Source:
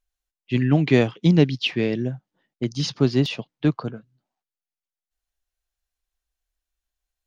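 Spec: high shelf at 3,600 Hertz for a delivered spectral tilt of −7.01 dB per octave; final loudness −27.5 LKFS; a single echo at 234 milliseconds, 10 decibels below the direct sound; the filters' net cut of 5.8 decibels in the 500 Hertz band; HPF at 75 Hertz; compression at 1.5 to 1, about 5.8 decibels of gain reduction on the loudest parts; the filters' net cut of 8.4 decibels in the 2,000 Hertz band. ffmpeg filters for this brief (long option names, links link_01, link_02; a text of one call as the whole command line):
ffmpeg -i in.wav -af "highpass=75,equalizer=frequency=500:width_type=o:gain=-7.5,equalizer=frequency=2000:width_type=o:gain=-8,highshelf=frequency=3600:gain=-7.5,acompressor=threshold=-30dB:ratio=1.5,aecho=1:1:234:0.316,volume=1.5dB" out.wav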